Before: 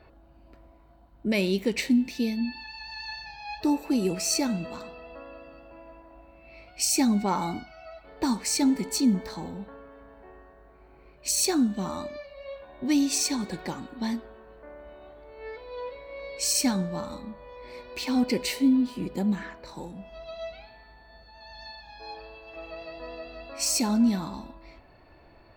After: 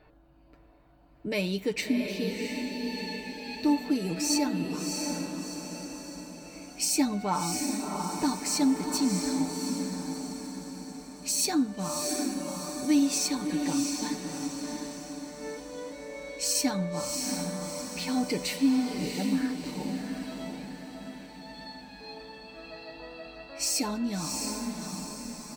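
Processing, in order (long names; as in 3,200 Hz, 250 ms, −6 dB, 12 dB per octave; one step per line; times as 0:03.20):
comb filter 6.7 ms
on a send: feedback delay with all-pass diffusion 690 ms, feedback 50%, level −4 dB
on the sum: level −4 dB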